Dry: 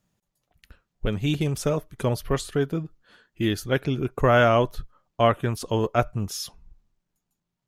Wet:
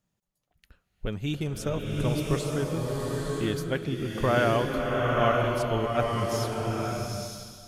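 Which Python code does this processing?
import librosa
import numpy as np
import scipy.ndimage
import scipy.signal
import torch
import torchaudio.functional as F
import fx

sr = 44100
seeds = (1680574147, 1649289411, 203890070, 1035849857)

y = fx.rev_bloom(x, sr, seeds[0], attack_ms=940, drr_db=-1.5)
y = y * librosa.db_to_amplitude(-6.0)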